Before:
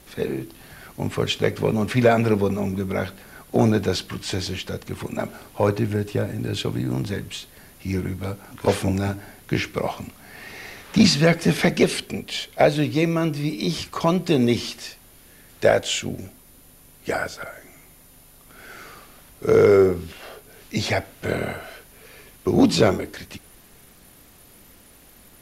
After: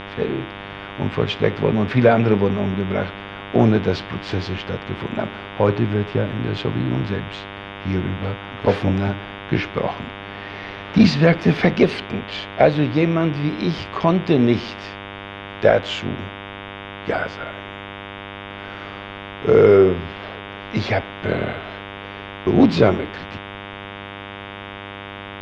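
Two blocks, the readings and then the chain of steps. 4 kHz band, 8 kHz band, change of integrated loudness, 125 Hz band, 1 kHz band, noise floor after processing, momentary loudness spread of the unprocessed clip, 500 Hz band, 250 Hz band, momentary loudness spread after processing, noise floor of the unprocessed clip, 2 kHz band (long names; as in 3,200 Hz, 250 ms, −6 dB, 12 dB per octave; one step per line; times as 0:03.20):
−1.0 dB, below −10 dB, +2.5 dB, +3.5 dB, +3.5 dB, −34 dBFS, 19 LU, +3.0 dB, +3.0 dB, 18 LU, −50 dBFS, +3.0 dB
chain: hum with harmonics 100 Hz, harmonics 37, −36 dBFS −1 dB per octave
high-frequency loss of the air 250 metres
level +3.5 dB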